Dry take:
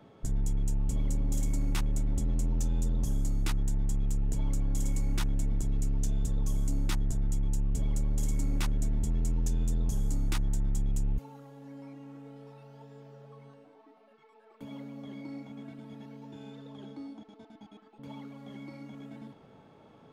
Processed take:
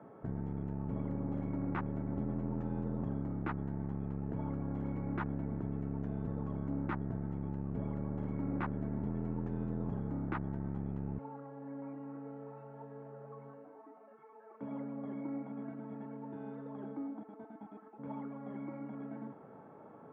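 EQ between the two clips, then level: high-pass 120 Hz 12 dB/octave; low-pass 1.6 kHz 24 dB/octave; bass shelf 200 Hz -6 dB; +4.0 dB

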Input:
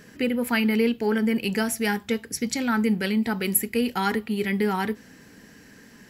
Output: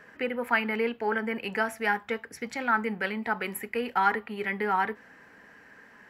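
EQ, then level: three-band isolator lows -17 dB, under 590 Hz, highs -21 dB, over 2.1 kHz; +4.5 dB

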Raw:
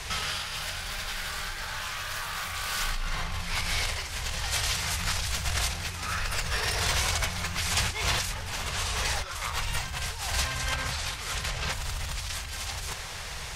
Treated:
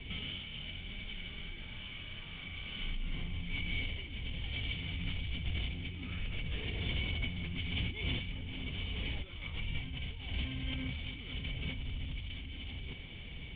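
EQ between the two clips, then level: cascade formant filter i; band-stop 2.4 kHz, Q 21; +8.0 dB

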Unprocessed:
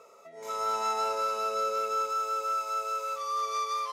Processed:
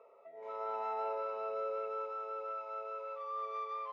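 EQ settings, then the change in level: three-band isolator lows -19 dB, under 410 Hz, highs -17 dB, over 3 kHz; tape spacing loss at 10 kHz 36 dB; peaking EQ 1.4 kHz -8.5 dB 0.71 oct; +1.0 dB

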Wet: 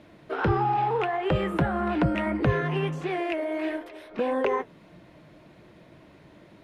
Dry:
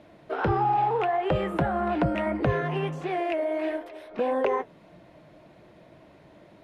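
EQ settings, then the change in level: peaking EQ 670 Hz -6 dB 0.89 oct; +2.5 dB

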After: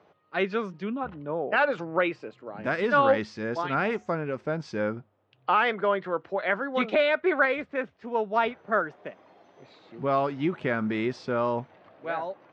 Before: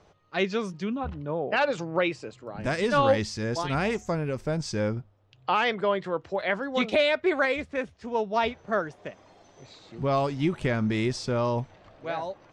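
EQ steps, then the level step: dynamic bell 1.4 kHz, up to +6 dB, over -45 dBFS, Q 3; band-pass 190–2800 Hz; 0.0 dB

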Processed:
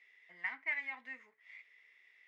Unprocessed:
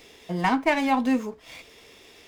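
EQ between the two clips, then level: band-pass filter 2 kHz, Q 14; 0.0 dB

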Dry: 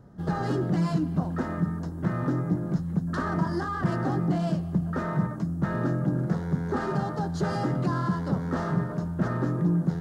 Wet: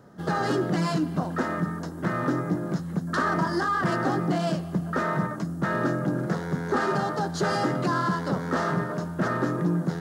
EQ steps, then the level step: high-pass 530 Hz 6 dB/octave; peaking EQ 850 Hz -3 dB 0.73 oct; +8.5 dB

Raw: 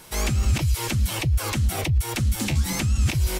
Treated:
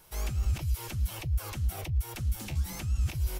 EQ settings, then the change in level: graphic EQ 125/250/500/1000/2000/4000/8000 Hz -4/-11/-4/-4/-7/-6/-8 dB; -5.5 dB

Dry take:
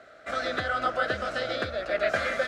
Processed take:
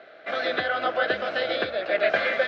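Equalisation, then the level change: cabinet simulation 240–3900 Hz, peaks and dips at 250 Hz -6 dB, 590 Hz -3 dB, 1.3 kHz -9 dB; band-stop 1.9 kHz, Q 24; +6.5 dB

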